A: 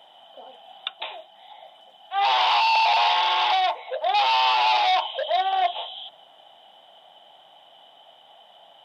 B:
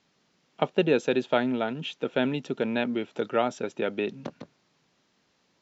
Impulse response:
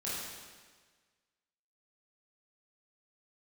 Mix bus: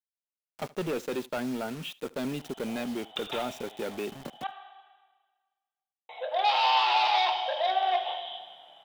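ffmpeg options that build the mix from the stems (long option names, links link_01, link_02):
-filter_complex "[0:a]adelay=2300,volume=-7dB,asplit=3[link_01][link_02][link_03];[link_01]atrim=end=4.47,asetpts=PTS-STARTPTS,afade=type=out:start_time=4.466:duration=0.004:curve=hsin[link_04];[link_02]atrim=start=4.47:end=6.09,asetpts=PTS-STARTPTS,volume=0[link_05];[link_03]atrim=start=6.09,asetpts=PTS-STARTPTS,afade=type=in:duration=0.004:curve=hsin[link_06];[link_04][link_05][link_06]concat=n=3:v=0:a=1,asplit=2[link_07][link_08];[link_08]volume=-6dB[link_09];[1:a]asoftclip=type=tanh:threshold=-23.5dB,acrusher=bits=6:mix=0:aa=0.000001,volume=-3dB,asplit=2[link_10][link_11];[link_11]volume=-22dB[link_12];[2:a]atrim=start_sample=2205[link_13];[link_09][link_13]afir=irnorm=-1:irlink=0[link_14];[link_12]aecho=0:1:75:1[link_15];[link_07][link_10][link_14][link_15]amix=inputs=4:normalize=0"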